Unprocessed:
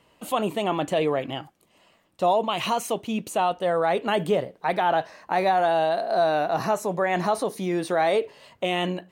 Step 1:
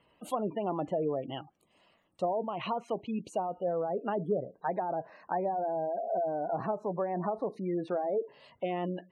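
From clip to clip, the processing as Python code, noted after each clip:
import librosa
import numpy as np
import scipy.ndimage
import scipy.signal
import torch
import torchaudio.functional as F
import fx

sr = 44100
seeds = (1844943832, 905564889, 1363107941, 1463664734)

y = fx.spec_gate(x, sr, threshold_db=-20, keep='strong')
y = fx.env_lowpass_down(y, sr, base_hz=610.0, full_db=-19.0)
y = y * 10.0 ** (-6.5 / 20.0)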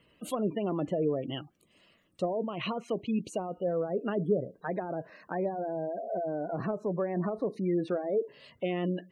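y = fx.peak_eq(x, sr, hz=840.0, db=-13.5, octaves=0.78)
y = y * 10.0 ** (5.0 / 20.0)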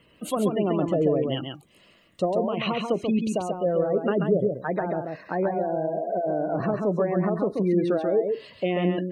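y = x + 10.0 ** (-4.5 / 20.0) * np.pad(x, (int(136 * sr / 1000.0), 0))[:len(x)]
y = y * 10.0 ** (6.0 / 20.0)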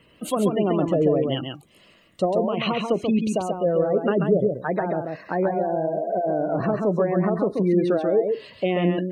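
y = fx.wow_flutter(x, sr, seeds[0], rate_hz=2.1, depth_cents=29.0)
y = y * 10.0 ** (2.5 / 20.0)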